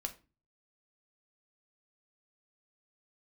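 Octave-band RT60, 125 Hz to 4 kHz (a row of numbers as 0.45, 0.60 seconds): 0.60, 0.50, 0.35, 0.30, 0.30, 0.25 seconds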